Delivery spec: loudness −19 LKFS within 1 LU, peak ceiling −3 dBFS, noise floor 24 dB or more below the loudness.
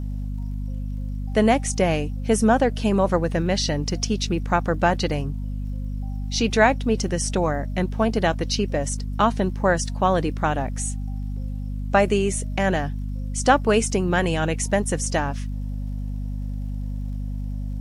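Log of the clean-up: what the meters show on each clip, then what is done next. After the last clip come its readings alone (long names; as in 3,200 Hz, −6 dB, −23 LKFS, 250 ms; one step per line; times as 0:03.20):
crackle rate 40 per second; mains hum 50 Hz; hum harmonics up to 250 Hz; level of the hum −25 dBFS; integrated loudness −23.5 LKFS; sample peak −3.5 dBFS; target loudness −19.0 LKFS
→ click removal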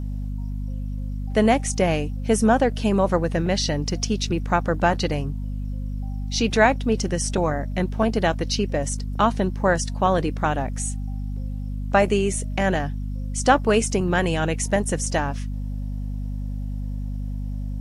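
crackle rate 0.11 per second; mains hum 50 Hz; hum harmonics up to 250 Hz; level of the hum −26 dBFS
→ mains-hum notches 50/100/150/200/250 Hz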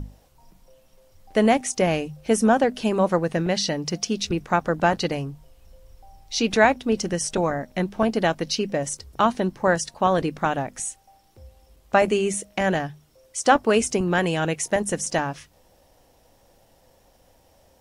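mains hum none found; integrated loudness −23.0 LKFS; sample peak −3.5 dBFS; target loudness −19.0 LKFS
→ level +4 dB
brickwall limiter −3 dBFS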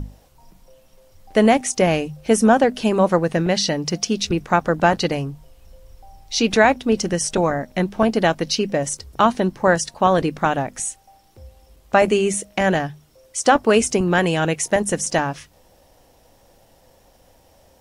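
integrated loudness −19.5 LKFS; sample peak −3.0 dBFS; background noise floor −55 dBFS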